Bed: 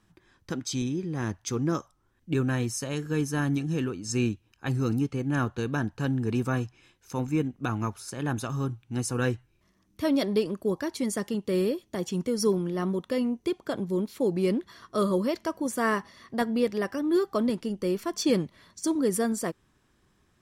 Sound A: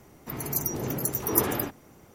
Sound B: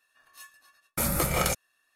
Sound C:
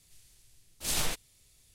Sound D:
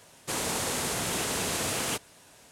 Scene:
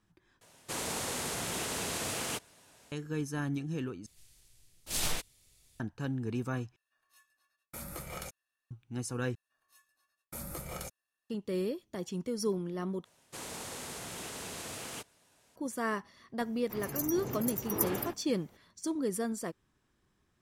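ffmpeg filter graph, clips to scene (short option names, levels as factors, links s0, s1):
-filter_complex "[4:a]asplit=2[s0][s1];[2:a]asplit=2[s2][s3];[0:a]volume=0.422[s4];[s3]equalizer=f=2200:t=o:w=2.2:g=-4[s5];[s4]asplit=6[s6][s7][s8][s9][s10][s11];[s6]atrim=end=0.414[s12];[s0]atrim=end=2.51,asetpts=PTS-STARTPTS,volume=0.531[s13];[s7]atrim=start=2.916:end=4.064[s14];[3:a]atrim=end=1.74,asetpts=PTS-STARTPTS,volume=0.794[s15];[s8]atrim=start=5.796:end=6.764[s16];[s2]atrim=end=1.95,asetpts=PTS-STARTPTS,volume=0.15[s17];[s9]atrim=start=8.706:end=9.354[s18];[s5]atrim=end=1.95,asetpts=PTS-STARTPTS,volume=0.188[s19];[s10]atrim=start=11.296:end=13.054[s20];[s1]atrim=end=2.51,asetpts=PTS-STARTPTS,volume=0.251[s21];[s11]atrim=start=15.556[s22];[1:a]atrim=end=2.14,asetpts=PTS-STARTPTS,volume=0.422,afade=t=in:d=0.004:c=hsin,afade=t=out:st=2.136:d=0.004:c=hsin,adelay=16430[s23];[s12][s13]acrossfade=d=0.004:c1=hsin:c2=hsin[s24];[s24][s14]acrossfade=d=0.004:c1=hsin:c2=hsin[s25];[s25][s15]acrossfade=d=0.004:c1=hsin:c2=hsin[s26];[s26][s16]acrossfade=d=0.004:c1=hsin:c2=hsin[s27];[s27][s17]acrossfade=d=0.004:c1=hsin:c2=hsin[s28];[s28][s18]acrossfade=d=0.004:c1=hsin:c2=hsin[s29];[s29][s19]acrossfade=d=0.004:c1=hsin:c2=hsin[s30];[s30][s20]acrossfade=d=0.004:c1=hsin:c2=hsin[s31];[s31][s21]acrossfade=d=0.004:c1=hsin:c2=hsin[s32];[s32][s22]acrossfade=d=0.004:c1=hsin:c2=hsin[s33];[s33][s23]amix=inputs=2:normalize=0"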